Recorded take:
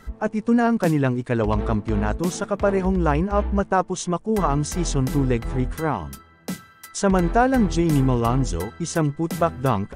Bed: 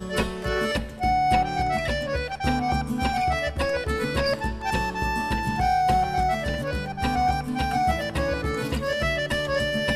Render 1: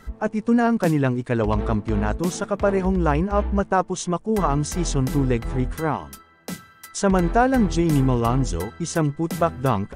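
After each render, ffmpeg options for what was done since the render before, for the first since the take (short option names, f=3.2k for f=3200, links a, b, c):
-filter_complex "[0:a]asettb=1/sr,asplit=3[a][b][c];[a]atrim=end=5.964[d];[b]atrim=start=5.96:end=6.52,asetpts=PTS-STARTPTS,afade=t=in:d=0.004:c=qsin,afade=t=out:st=0.556:d=0.004:c=qsin,equalizer=f=110:t=o:w=1.7:g=-11[e];[c]atrim=start=6.516[f];[d][e]acrossfade=d=0.004:c1=hsin:c2=qsin[g];[g][f]acrossfade=d=0.004:c1=qsin:c2=hsin"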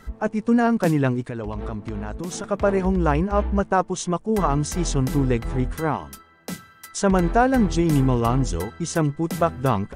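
-filter_complex "[0:a]asettb=1/sr,asplit=3[a][b][c];[a]atrim=end=1.214[d];[b]atrim=start=1.21:end=2.44,asetpts=PTS-STARTPTS,afade=t=in:d=0.004:c=qsin,afade=t=out:st=1.226:d=0.004:c=qsin,acompressor=threshold=-25dB:ratio=10:attack=3.2:release=140:knee=1:detection=peak[e];[c]atrim=start=2.436[f];[d][e]acrossfade=d=0.004:c1=hsin:c2=qsin[g];[g][f]acrossfade=d=0.004:c1=qsin:c2=hsin"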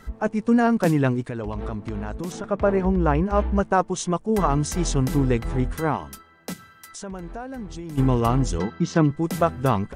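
-filter_complex "[0:a]asettb=1/sr,asplit=3[a][b][c];[a]atrim=end=2.324[d];[b]atrim=start=2.32:end=3.26,asetpts=PTS-STARTPTS,afade=t=in:d=0.004:c=qsin,afade=t=out:st=0.936:d=0.004:c=qsin,lowpass=f=2.3k:p=1[e];[c]atrim=start=3.256[f];[d][e]acrossfade=d=0.004:c1=hsin:c2=qsin[g];[g][f]acrossfade=d=0.004:c1=qsin:c2=hsin,asplit=3[h][i][j];[h]afade=t=out:st=6.52:d=0.02[k];[i]acompressor=threshold=-39dB:ratio=2.5:attack=3.2:release=140:knee=1:detection=peak,afade=t=in:st=6.52:d=0.02,afade=t=out:st=7.97:d=0.02[l];[j]afade=t=in:st=7.97:d=0.02[m];[k][l][m]amix=inputs=3:normalize=0,asettb=1/sr,asplit=3[n][o][p];[n]atrim=end=8.584[q];[o]atrim=start=8.58:end=9.11,asetpts=PTS-STARTPTS,afade=t=in:d=0.004:c=qsin,afade=t=out:st=0.526:d=0.004:c=qsin,highpass=100,equalizer=f=190:t=q:w=4:g=10,equalizer=f=310:t=q:w=4:g=4,equalizer=f=1.1k:t=q:w=4:g=3,lowpass=f=5.3k:w=0.5412,lowpass=f=5.3k:w=1.3066[r];[p]atrim=start=9.106[s];[q][r]acrossfade=d=0.004:c1=hsin:c2=qsin[t];[t][s]acrossfade=d=0.004:c1=qsin:c2=hsin"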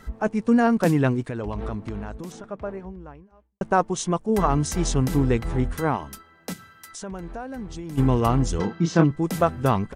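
-filter_complex "[0:a]asplit=3[a][b][c];[a]afade=t=out:st=8.58:d=0.02[d];[b]asplit=2[e][f];[f]adelay=30,volume=-5.5dB[g];[e][g]amix=inputs=2:normalize=0,afade=t=in:st=8.58:d=0.02,afade=t=out:st=9.03:d=0.02[h];[c]afade=t=in:st=9.03:d=0.02[i];[d][h][i]amix=inputs=3:normalize=0,asplit=2[j][k];[j]atrim=end=3.61,asetpts=PTS-STARTPTS,afade=t=out:st=1.75:d=1.86:c=qua[l];[k]atrim=start=3.61,asetpts=PTS-STARTPTS,afade=t=in:d=0.004:c=hsin[m];[l][m]concat=n=2:v=0:a=1"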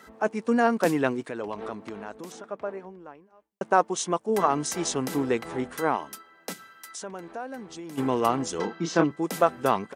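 -af "highpass=320"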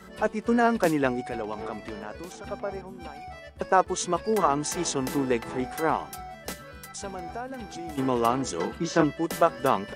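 -filter_complex "[1:a]volume=-18dB[a];[0:a][a]amix=inputs=2:normalize=0"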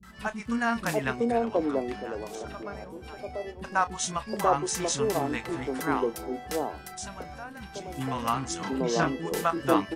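-filter_complex "[0:a]asplit=2[a][b];[b]adelay=30,volume=-13.5dB[c];[a][c]amix=inputs=2:normalize=0,acrossover=split=240|770[d][e][f];[f]adelay=30[g];[e]adelay=720[h];[d][h][g]amix=inputs=3:normalize=0"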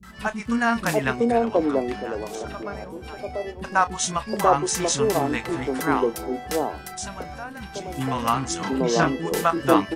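-af "volume=5.5dB"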